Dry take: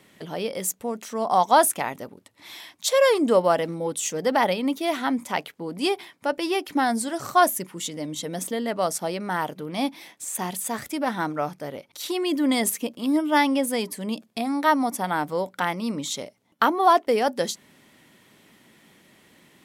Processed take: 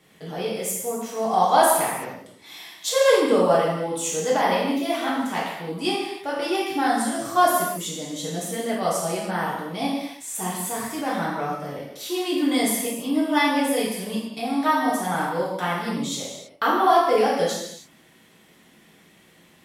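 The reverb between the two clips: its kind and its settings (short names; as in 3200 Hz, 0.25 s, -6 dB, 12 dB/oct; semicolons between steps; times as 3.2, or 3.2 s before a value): non-linear reverb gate 0.35 s falling, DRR -7 dB; gain -6.5 dB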